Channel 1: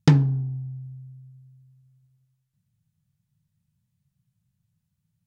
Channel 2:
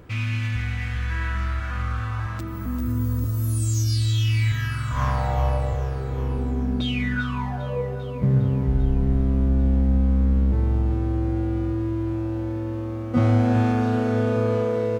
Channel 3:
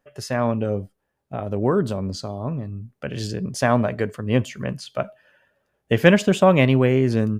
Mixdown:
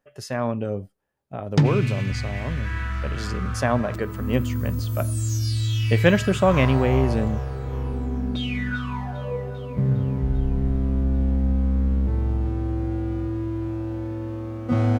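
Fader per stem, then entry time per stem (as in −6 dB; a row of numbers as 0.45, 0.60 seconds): −2.0, −2.0, −3.5 decibels; 1.50, 1.55, 0.00 seconds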